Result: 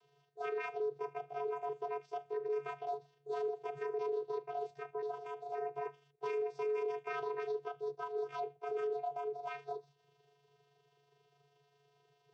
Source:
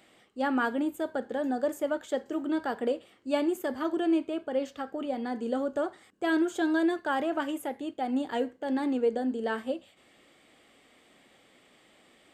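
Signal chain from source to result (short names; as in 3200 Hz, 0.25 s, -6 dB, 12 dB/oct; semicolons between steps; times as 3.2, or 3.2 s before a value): delay-line pitch shifter +7 st; vocoder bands 16, square 142 Hz; limiter -25.5 dBFS, peak gain reduction 9 dB; gain -4.5 dB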